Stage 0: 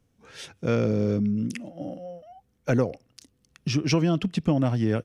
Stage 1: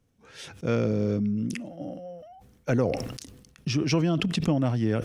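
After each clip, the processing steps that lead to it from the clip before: decay stretcher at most 52 dB/s; trim -2 dB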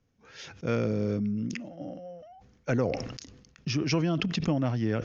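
rippled Chebyshev low-pass 6.8 kHz, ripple 3 dB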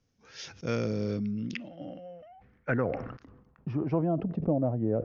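low-pass sweep 5.7 kHz -> 600 Hz, 0.85–4.36 s; trim -2.5 dB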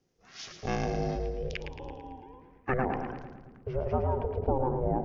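ring modulator 260 Hz; two-band feedback delay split 300 Hz, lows 225 ms, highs 111 ms, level -8 dB; trim +2 dB

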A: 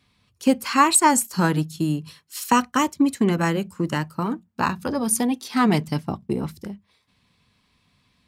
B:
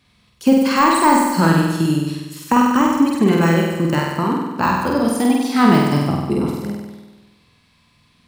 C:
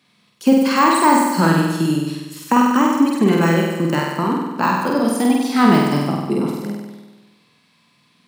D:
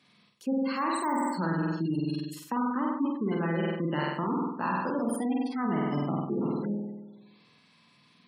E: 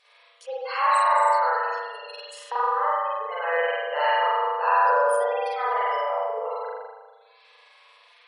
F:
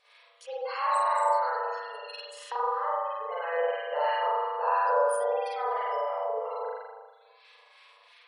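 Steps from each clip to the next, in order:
de-esser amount 75%; flutter echo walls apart 8.3 m, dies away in 1.2 s; trim +4 dB
high-pass 150 Hz 24 dB/octave
spectral gate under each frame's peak -25 dB strong; reverse; compression 6:1, threshold -23 dBFS, peak gain reduction 14.5 dB; reverse; trim -3.5 dB
spring tank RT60 1.3 s, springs 38 ms, chirp 65 ms, DRR -7.5 dB; FFT band-pass 430–11000 Hz; trim +2.5 dB
harmonic tremolo 3 Hz, depth 50%, crossover 1.2 kHz; dynamic bell 2.1 kHz, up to -8 dB, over -39 dBFS, Q 0.73

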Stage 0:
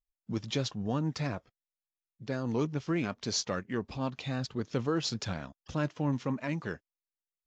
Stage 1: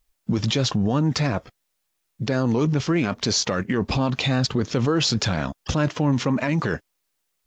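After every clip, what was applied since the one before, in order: in parallel at +3 dB: compressor with a negative ratio -39 dBFS, ratio -1; on the sum: peak limiter -20 dBFS, peak gain reduction 5.5 dB; trim +8 dB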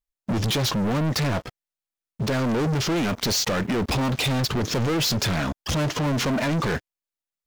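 waveshaping leveller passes 5; trim -8.5 dB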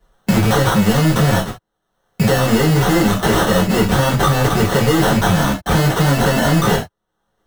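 sample-rate reducer 2.4 kHz, jitter 0%; gated-style reverb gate 100 ms falling, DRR -5.5 dB; three bands compressed up and down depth 70%; trim +3 dB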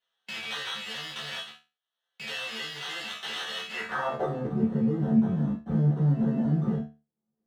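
band-pass sweep 3.1 kHz -> 210 Hz, 3.69–4.48 s; feedback comb 74 Hz, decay 0.29 s, harmonics all, mix 90%; trim +1.5 dB

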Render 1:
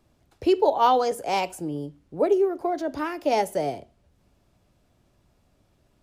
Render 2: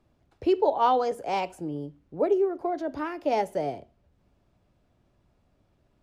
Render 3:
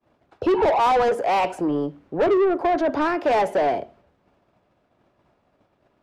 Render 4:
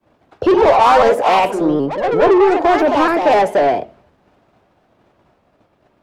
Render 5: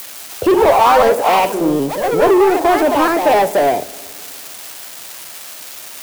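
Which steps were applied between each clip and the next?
low-pass 2.8 kHz 6 dB/octave; trim -2.5 dB
spectral replace 0.41–0.63 s, 780–2500 Hz both; expander -59 dBFS; overdrive pedal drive 27 dB, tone 1.3 kHz, clips at -11 dBFS
ever faster or slower copies 174 ms, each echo +3 st, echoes 2, each echo -6 dB; vibrato with a chosen wave saw up 3.9 Hz, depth 100 cents; trim +7 dB
zero-crossing glitches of -18 dBFS; reverberation RT60 2.7 s, pre-delay 3 ms, DRR 20 dB

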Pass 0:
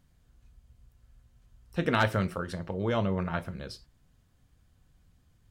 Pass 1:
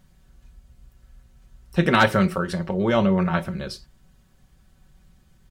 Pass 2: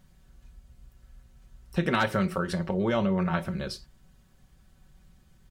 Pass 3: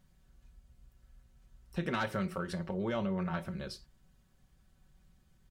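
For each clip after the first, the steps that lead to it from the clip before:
comb 5.3 ms, depth 57%; trim +7.5 dB
compression 2.5:1, threshold -22 dBFS, peak gain reduction 7.5 dB; trim -2 dB
saturation -14 dBFS, distortion -25 dB; trim -7.5 dB

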